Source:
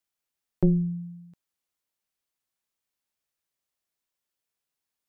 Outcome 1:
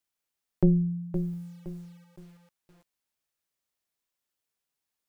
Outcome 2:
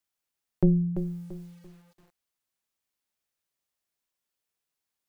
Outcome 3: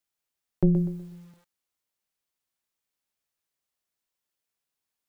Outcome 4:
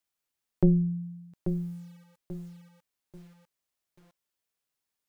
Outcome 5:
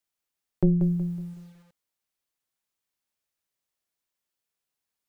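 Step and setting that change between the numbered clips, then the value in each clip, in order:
bit-crushed delay, time: 516 ms, 339 ms, 123 ms, 837 ms, 185 ms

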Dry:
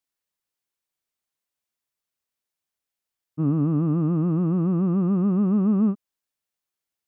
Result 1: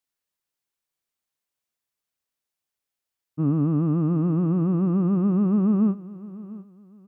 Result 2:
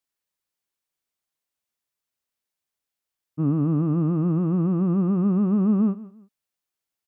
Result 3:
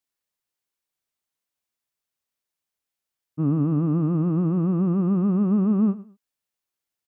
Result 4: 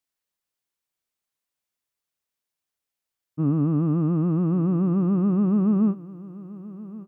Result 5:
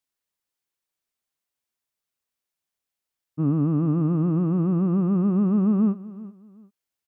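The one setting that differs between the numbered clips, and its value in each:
feedback delay, time: 698 ms, 168 ms, 109 ms, 1121 ms, 378 ms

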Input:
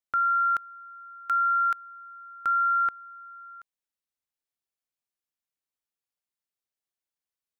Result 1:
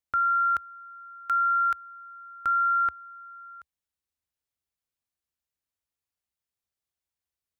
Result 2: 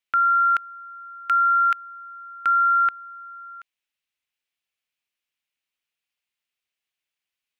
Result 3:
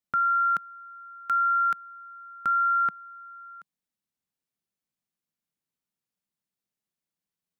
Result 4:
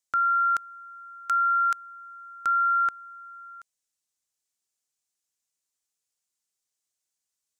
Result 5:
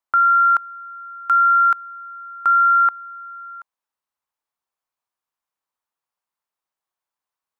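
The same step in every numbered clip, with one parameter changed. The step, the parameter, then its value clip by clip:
peaking EQ, frequency: 69 Hz, 2.6 kHz, 180 Hz, 7.1 kHz, 1 kHz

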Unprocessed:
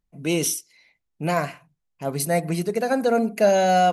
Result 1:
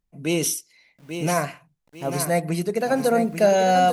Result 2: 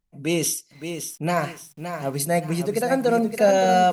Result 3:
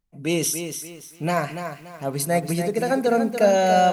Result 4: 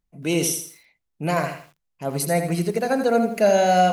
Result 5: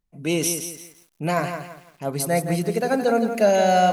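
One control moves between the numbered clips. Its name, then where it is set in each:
bit-crushed delay, time: 842 ms, 568 ms, 287 ms, 82 ms, 169 ms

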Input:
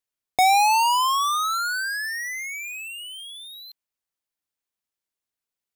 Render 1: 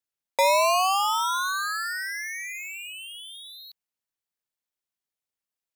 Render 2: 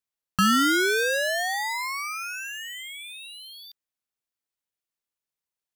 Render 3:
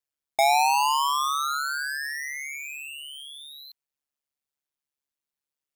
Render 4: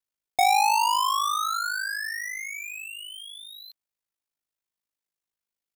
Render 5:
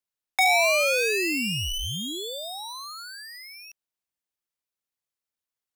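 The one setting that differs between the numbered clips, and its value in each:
ring modulator, frequency: 190 Hz, 550 Hz, 71 Hz, 26 Hz, 1.5 kHz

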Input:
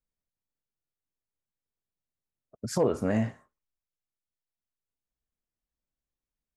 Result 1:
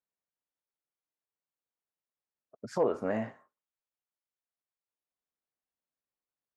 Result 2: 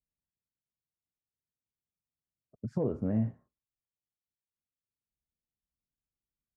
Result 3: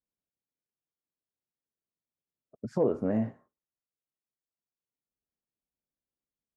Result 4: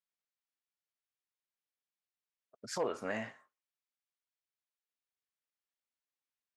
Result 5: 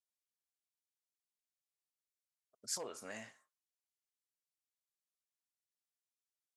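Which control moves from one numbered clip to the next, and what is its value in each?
band-pass filter, frequency: 880 Hz, 120 Hz, 320 Hz, 2.3 kHz, 7.8 kHz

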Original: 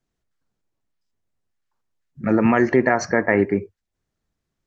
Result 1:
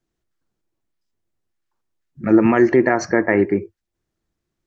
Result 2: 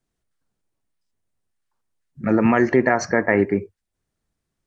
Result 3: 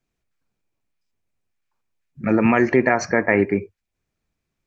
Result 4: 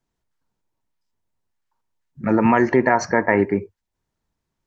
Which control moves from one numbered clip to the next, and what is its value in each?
peaking EQ, frequency: 340 Hz, 9.1 kHz, 2.4 kHz, 930 Hz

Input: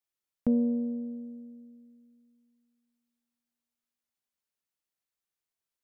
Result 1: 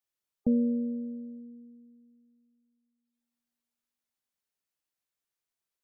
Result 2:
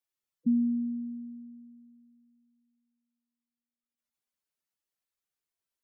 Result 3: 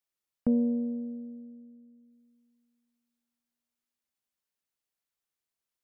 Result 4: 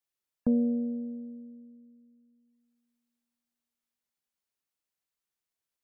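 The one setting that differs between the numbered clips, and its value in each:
spectral gate, under each frame's peak: -30 dB, -10 dB, -55 dB, -45 dB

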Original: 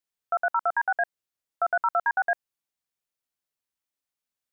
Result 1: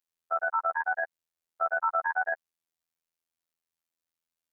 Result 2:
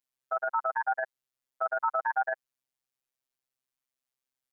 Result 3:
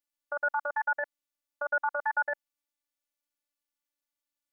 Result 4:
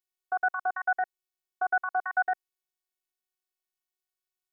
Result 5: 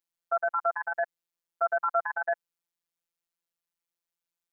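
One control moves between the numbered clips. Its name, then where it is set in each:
robot voice, frequency: 83 Hz, 130 Hz, 290 Hz, 370 Hz, 170 Hz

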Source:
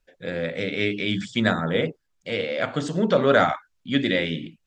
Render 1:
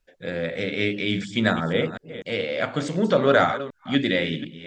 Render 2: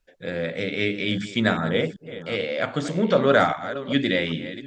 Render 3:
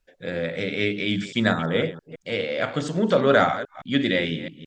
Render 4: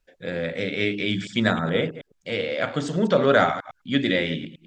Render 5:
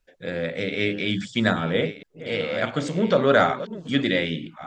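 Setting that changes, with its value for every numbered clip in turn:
chunks repeated in reverse, time: 247 ms, 393 ms, 166 ms, 106 ms, 677 ms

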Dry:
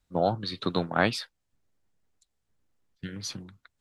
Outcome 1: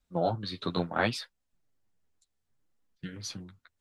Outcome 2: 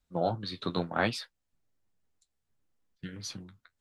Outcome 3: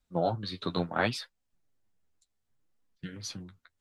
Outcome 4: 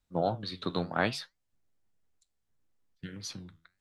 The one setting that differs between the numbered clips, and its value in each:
flange, regen: -9%, -47%, +26%, +82%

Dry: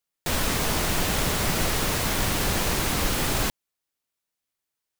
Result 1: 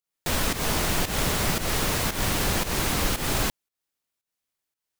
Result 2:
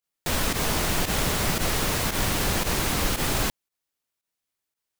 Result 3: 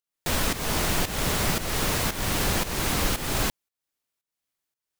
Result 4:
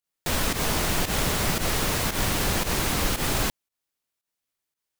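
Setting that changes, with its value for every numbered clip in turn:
volume shaper, release: 189 ms, 71 ms, 338 ms, 107 ms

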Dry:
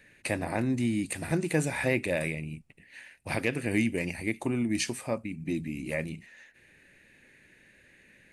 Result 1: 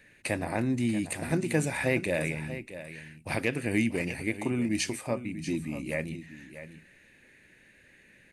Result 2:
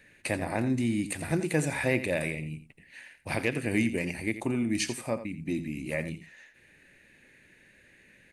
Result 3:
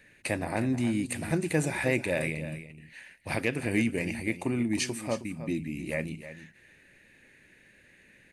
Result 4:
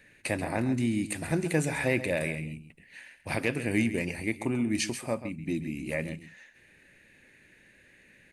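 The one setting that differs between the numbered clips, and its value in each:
delay, time: 638 ms, 85 ms, 314 ms, 134 ms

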